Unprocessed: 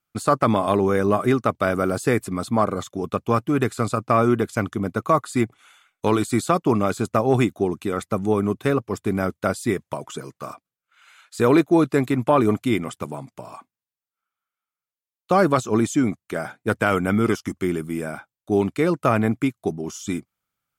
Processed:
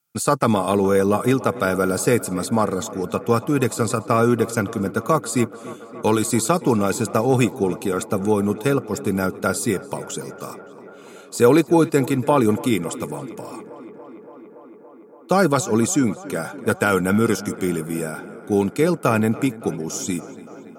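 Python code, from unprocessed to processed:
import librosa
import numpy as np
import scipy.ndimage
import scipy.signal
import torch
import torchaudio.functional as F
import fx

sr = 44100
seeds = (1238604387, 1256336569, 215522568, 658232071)

p1 = scipy.signal.sosfilt(scipy.signal.butter(2, 130.0, 'highpass', fs=sr, output='sos'), x)
p2 = fx.bass_treble(p1, sr, bass_db=7, treble_db=12)
p3 = fx.small_body(p2, sr, hz=(480.0, 850.0, 1400.0, 2500.0), ring_ms=45, db=8)
p4 = p3 + fx.echo_tape(p3, sr, ms=284, feedback_pct=89, wet_db=-16.5, lp_hz=3100.0, drive_db=3.0, wow_cents=6, dry=0)
y = p4 * librosa.db_to_amplitude(-2.0)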